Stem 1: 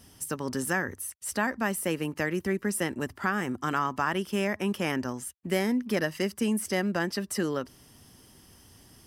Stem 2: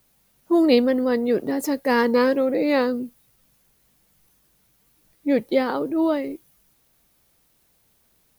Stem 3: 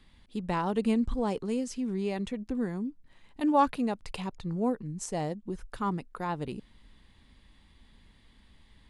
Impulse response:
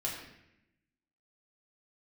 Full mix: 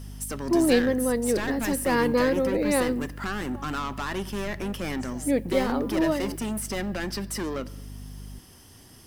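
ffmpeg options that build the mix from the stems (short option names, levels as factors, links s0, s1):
-filter_complex "[0:a]asoftclip=type=tanh:threshold=0.0299,volume=1.41,asplit=2[s0][s1];[s1]volume=0.15[s2];[1:a]aeval=exprs='val(0)+0.02*(sin(2*PI*50*n/s)+sin(2*PI*2*50*n/s)/2+sin(2*PI*3*50*n/s)/3+sin(2*PI*4*50*n/s)/4+sin(2*PI*5*50*n/s)/5)':c=same,volume=0.596,asplit=2[s3][s4];[s4]volume=0.0631[s5];[2:a]acompressor=threshold=0.0282:ratio=6,volume=0.237[s6];[3:a]atrim=start_sample=2205[s7];[s2][s5]amix=inputs=2:normalize=0[s8];[s8][s7]afir=irnorm=-1:irlink=0[s9];[s0][s3][s6][s9]amix=inputs=4:normalize=0"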